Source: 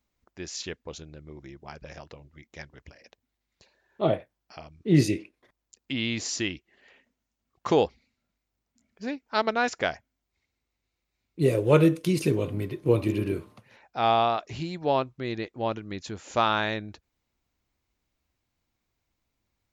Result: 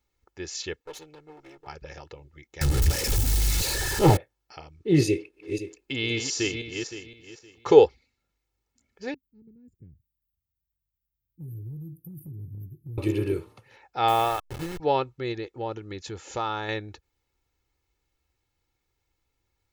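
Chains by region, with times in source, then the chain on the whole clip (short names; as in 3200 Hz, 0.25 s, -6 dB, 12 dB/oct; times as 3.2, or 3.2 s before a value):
0.8–1.67 minimum comb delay 6.6 ms + tone controls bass -13 dB, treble 0 dB
2.61–4.17 zero-crossing step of -29 dBFS + tone controls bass +14 dB, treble +12 dB + Doppler distortion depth 0.74 ms
5.07–7.85 regenerating reverse delay 0.258 s, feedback 46%, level -5.5 dB + bell 430 Hz +9 dB 0.24 oct + notch 1900 Hz, Q 21
9.14–12.98 inverse Chebyshev band-stop 610–6400 Hz, stop band 60 dB + tilt +1.5 dB/oct + compressor 5:1, threshold -35 dBFS
14.08–14.8 level-crossing sampler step -31.5 dBFS + dynamic EQ 5200 Hz, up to -4 dB, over -41 dBFS, Q 0.71
15.32–16.69 dynamic EQ 2400 Hz, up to -7 dB, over -40 dBFS, Q 0.79 + compressor 1.5:1, threshold -33 dBFS
whole clip: notch 1100 Hz, Q 29; comb 2.3 ms, depth 58%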